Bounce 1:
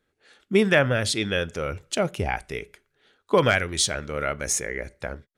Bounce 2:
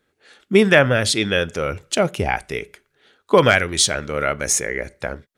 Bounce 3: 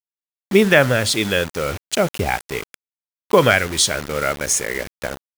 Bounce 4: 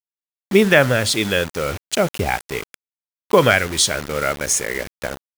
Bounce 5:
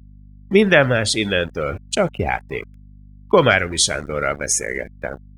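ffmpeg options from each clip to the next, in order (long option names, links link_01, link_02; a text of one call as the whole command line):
ffmpeg -i in.wav -af "lowshelf=frequency=61:gain=-9,volume=6dB" out.wav
ffmpeg -i in.wav -af "acrusher=bits=4:mix=0:aa=0.000001" out.wav
ffmpeg -i in.wav -af anull out.wav
ffmpeg -i in.wav -af "afftdn=noise_reduction=26:noise_floor=-30,aeval=exprs='val(0)+0.00794*(sin(2*PI*50*n/s)+sin(2*PI*2*50*n/s)/2+sin(2*PI*3*50*n/s)/3+sin(2*PI*4*50*n/s)/4+sin(2*PI*5*50*n/s)/5)':channel_layout=same" out.wav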